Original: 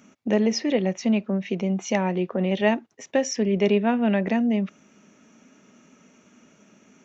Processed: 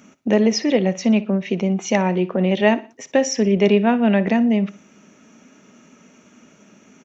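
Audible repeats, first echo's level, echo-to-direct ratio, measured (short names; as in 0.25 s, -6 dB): 3, -18.0 dB, -17.5 dB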